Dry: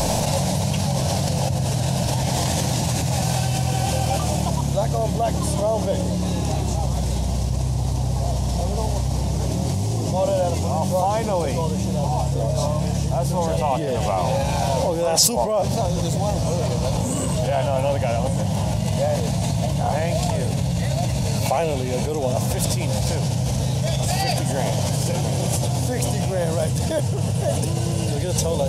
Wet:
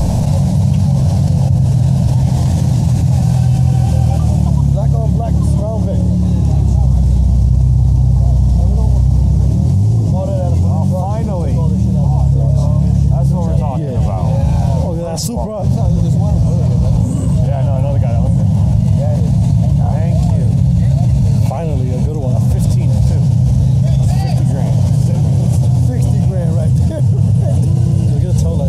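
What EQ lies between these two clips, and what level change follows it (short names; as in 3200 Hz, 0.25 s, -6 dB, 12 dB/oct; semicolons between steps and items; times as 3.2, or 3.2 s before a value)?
tone controls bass +15 dB, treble +6 dB; high shelf 2400 Hz -11.5 dB; -2.0 dB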